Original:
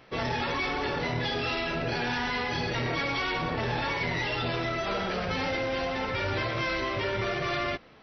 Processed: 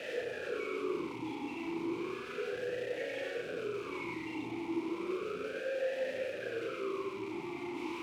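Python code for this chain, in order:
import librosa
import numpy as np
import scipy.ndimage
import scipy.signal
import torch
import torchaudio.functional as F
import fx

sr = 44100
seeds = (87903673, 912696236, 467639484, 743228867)

p1 = fx.envelope_sharpen(x, sr, power=3.0)
p2 = fx.quant_dither(p1, sr, seeds[0], bits=6, dither='triangular')
p3 = fx.rotary(p2, sr, hz=6.0)
p4 = fx.schmitt(p3, sr, flips_db=-41.5)
p5 = fx.doubler(p4, sr, ms=35.0, db=-3)
p6 = p5 + fx.echo_single(p5, sr, ms=93, db=-3.5, dry=0)
p7 = fx.vowel_sweep(p6, sr, vowels='e-u', hz=0.33)
y = F.gain(torch.from_numpy(p7), 2.0).numpy()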